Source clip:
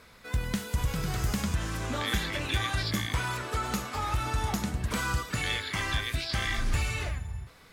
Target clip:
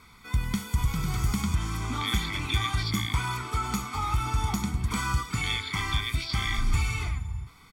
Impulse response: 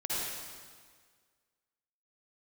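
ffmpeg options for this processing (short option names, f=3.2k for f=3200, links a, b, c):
-af "aecho=1:1:0.9:0.88,volume=-2dB"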